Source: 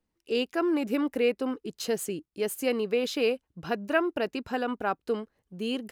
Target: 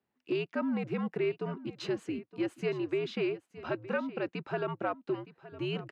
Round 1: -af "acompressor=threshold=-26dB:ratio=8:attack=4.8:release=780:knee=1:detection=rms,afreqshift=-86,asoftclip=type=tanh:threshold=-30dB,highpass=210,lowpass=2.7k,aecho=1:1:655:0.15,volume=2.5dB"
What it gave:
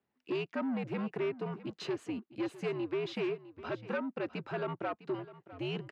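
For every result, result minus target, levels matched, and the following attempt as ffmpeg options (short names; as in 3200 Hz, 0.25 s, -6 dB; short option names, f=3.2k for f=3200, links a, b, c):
soft clip: distortion +14 dB; echo 0.261 s early
-af "acompressor=threshold=-26dB:ratio=8:attack=4.8:release=780:knee=1:detection=rms,afreqshift=-86,asoftclip=type=tanh:threshold=-20dB,highpass=210,lowpass=2.7k,aecho=1:1:655:0.15,volume=2.5dB"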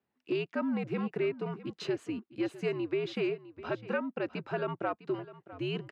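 echo 0.261 s early
-af "acompressor=threshold=-26dB:ratio=8:attack=4.8:release=780:knee=1:detection=rms,afreqshift=-86,asoftclip=type=tanh:threshold=-20dB,highpass=210,lowpass=2.7k,aecho=1:1:916:0.15,volume=2.5dB"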